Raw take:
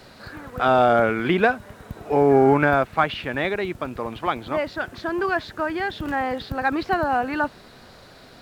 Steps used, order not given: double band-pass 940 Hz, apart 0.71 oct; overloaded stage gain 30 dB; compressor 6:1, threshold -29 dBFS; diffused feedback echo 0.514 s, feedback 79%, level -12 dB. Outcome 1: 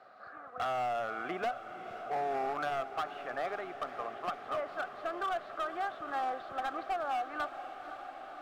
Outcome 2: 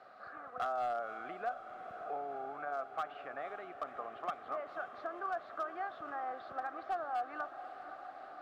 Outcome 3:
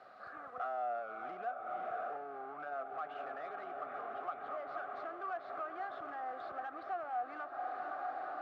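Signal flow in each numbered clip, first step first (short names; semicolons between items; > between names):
double band-pass > compressor > overloaded stage > diffused feedback echo; compressor > double band-pass > overloaded stage > diffused feedback echo; diffused feedback echo > compressor > overloaded stage > double band-pass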